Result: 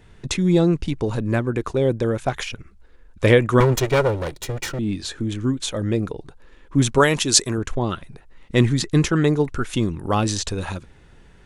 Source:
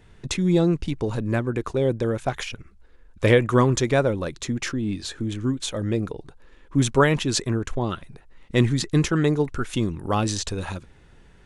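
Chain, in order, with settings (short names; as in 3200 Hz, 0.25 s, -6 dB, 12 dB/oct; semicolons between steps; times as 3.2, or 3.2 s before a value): 3.6–4.79 minimum comb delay 2.1 ms; 6.98–7.58 tone controls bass -5 dB, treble +10 dB; gain +2.5 dB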